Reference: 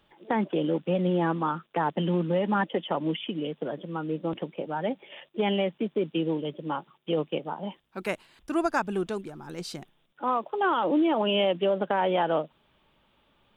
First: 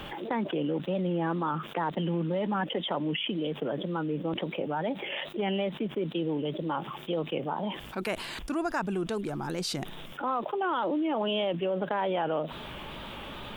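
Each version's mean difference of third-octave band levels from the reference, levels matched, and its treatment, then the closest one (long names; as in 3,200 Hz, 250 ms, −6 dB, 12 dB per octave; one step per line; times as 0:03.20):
5.0 dB: tape wow and flutter 68 cents
envelope flattener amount 70%
level −6.5 dB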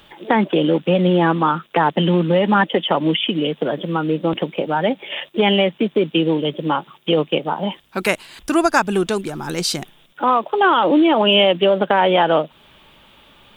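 2.0 dB: high-shelf EQ 2,200 Hz +8 dB
in parallel at +2.5 dB: downward compressor, threshold −35 dBFS, peak gain reduction 15.5 dB
on the sum: level +7 dB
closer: second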